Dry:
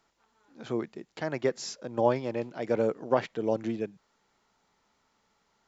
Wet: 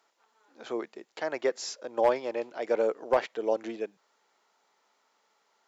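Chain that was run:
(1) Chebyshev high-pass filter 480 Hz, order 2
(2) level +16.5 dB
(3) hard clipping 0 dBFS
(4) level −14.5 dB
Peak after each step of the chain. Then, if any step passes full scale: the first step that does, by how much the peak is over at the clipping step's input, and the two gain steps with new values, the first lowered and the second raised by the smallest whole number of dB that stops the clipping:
−12.0, +4.5, 0.0, −14.5 dBFS
step 2, 4.5 dB
step 2 +11.5 dB, step 4 −9.5 dB

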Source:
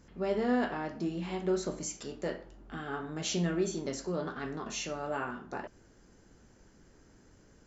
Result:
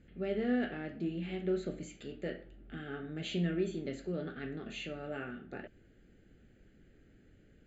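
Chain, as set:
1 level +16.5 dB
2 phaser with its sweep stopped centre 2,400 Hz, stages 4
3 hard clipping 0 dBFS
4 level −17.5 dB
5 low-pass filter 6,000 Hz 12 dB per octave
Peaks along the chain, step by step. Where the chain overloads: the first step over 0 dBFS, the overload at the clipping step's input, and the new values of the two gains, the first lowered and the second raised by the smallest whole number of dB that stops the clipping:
−3.0, −4.5, −4.5, −22.0, −22.0 dBFS
no step passes full scale

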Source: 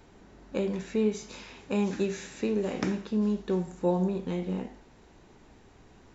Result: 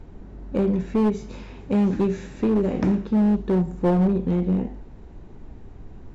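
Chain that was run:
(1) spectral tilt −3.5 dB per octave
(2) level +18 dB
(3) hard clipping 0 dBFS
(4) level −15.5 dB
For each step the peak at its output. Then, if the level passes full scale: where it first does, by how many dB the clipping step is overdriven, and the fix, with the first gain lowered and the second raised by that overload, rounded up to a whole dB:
−9.5, +8.5, 0.0, −15.5 dBFS
step 2, 8.5 dB
step 2 +9 dB, step 4 −6.5 dB

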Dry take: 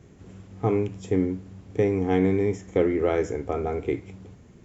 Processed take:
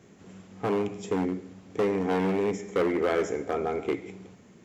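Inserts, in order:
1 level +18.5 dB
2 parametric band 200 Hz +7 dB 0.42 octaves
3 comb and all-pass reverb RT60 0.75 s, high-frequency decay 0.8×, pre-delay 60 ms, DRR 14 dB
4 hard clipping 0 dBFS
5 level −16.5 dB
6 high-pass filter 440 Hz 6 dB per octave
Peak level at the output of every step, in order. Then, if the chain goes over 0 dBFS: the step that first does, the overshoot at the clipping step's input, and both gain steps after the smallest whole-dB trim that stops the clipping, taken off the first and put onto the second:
+9.0, +10.0, +10.0, 0.0, −16.5, −13.0 dBFS
step 1, 10.0 dB
step 1 +8.5 dB, step 5 −6.5 dB

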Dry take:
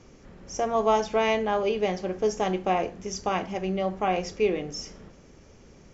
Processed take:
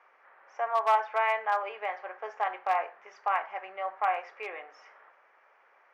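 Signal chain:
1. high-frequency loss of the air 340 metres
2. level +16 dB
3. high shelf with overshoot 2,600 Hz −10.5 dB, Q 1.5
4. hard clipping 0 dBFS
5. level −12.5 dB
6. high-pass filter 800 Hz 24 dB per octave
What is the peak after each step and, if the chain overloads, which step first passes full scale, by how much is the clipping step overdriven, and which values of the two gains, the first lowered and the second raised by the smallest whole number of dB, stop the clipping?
−12.5, +3.5, +4.0, 0.0, −12.5, −15.0 dBFS
step 2, 4.0 dB
step 2 +12 dB, step 5 −8.5 dB

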